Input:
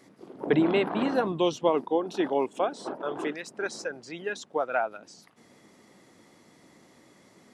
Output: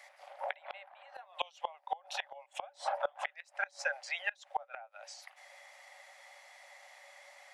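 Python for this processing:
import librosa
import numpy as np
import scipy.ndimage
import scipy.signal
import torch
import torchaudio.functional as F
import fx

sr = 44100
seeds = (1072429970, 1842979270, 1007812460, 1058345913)

y = scipy.signal.sosfilt(scipy.signal.cheby1(6, 9, 550.0, 'highpass', fs=sr, output='sos'), x)
y = fx.gate_flip(y, sr, shuts_db=-29.0, range_db=-27)
y = y * librosa.db_to_amplitude(9.0)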